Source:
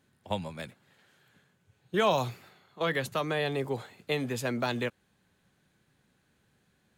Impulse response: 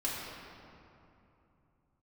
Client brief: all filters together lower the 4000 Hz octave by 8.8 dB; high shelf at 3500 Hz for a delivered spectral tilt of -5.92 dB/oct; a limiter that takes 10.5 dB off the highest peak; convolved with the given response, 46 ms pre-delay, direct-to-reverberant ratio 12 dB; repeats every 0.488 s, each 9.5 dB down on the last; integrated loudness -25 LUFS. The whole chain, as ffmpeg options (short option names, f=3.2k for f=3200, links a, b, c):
-filter_complex "[0:a]highshelf=f=3.5k:g=-5.5,equalizer=f=4k:t=o:g=-8,alimiter=level_in=2dB:limit=-24dB:level=0:latency=1,volume=-2dB,aecho=1:1:488|976|1464|1952:0.335|0.111|0.0365|0.012,asplit=2[a][b];[1:a]atrim=start_sample=2205,adelay=46[c];[b][c]afir=irnorm=-1:irlink=0,volume=-17.5dB[d];[a][d]amix=inputs=2:normalize=0,volume=12dB"